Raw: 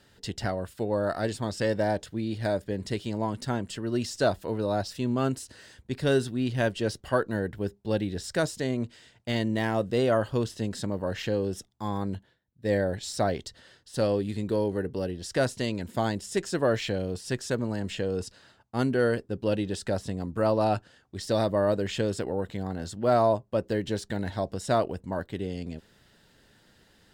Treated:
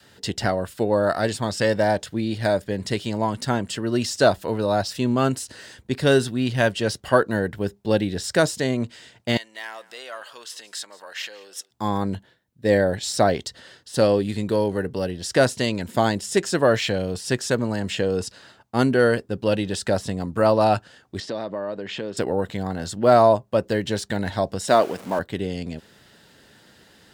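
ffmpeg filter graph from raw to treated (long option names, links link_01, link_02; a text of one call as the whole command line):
ffmpeg -i in.wav -filter_complex "[0:a]asettb=1/sr,asplit=3[link_01][link_02][link_03];[link_01]atrim=end=9.374[link_04];[link_02]atrim=start=9.37:end=11.71,asetpts=PTS-STARTPTS,afade=type=in:duration=0.004:curve=qsin,afade=type=out:start_time=2.336:duration=0.004:curve=qsin,acompressor=threshold=-35dB:ratio=2.5:attack=3.2:release=140:knee=1:detection=peak,highpass=1200,aecho=1:1:176:0.0944,atrim=end_sample=103194[link_05];[link_03]atrim=start=11.706[link_06];[link_04][link_05]acrossfade=duration=0.004:curve1=hsin:curve2=qsin[link_07];[link_07][link_06]acrossfade=duration=0.004:curve1=qsin:curve2=hsin,asettb=1/sr,asplit=3[link_08][link_09][link_10];[link_08]atrim=end=21.204[link_11];[link_09]atrim=start=21.2:end=22.17,asetpts=PTS-STARTPTS,afade=type=in:duration=0.004:curve=qsin,afade=type=out:start_time=0.966:duration=0.004:curve=qsin,highpass=160,lowpass=3900,acompressor=threshold=-38dB:ratio=2.5:attack=3.2:release=140:knee=1:detection=peak[link_12];[link_10]atrim=start=22.166[link_13];[link_11][link_12]acrossfade=duration=0.004:curve1=hsin:curve2=qsin[link_14];[link_14][link_13]acrossfade=duration=0.004:curve1=qsin:curve2=hsin,asettb=1/sr,asplit=3[link_15][link_16][link_17];[link_15]atrim=end=24.684[link_18];[link_16]atrim=start=24.68:end=25.19,asetpts=PTS-STARTPTS,afade=type=in:duration=0.004:curve=qsin,afade=type=out:start_time=0.506:duration=0.004:curve=qsin,aeval=exprs='val(0)+0.5*0.00944*sgn(val(0))':channel_layout=same,highpass=210[link_19];[link_17]atrim=start=25.186[link_20];[link_18][link_19]acrossfade=duration=0.004:curve1=hsin:curve2=qsin[link_21];[link_21][link_20]acrossfade=duration=0.004:curve1=qsin:curve2=hsin,highpass=frequency=130:poles=1,adynamicequalizer=threshold=0.00891:dfrequency=340:dqfactor=1.1:tfrequency=340:tqfactor=1.1:attack=5:release=100:ratio=0.375:range=3:mode=cutabove:tftype=bell,volume=8.5dB" out.wav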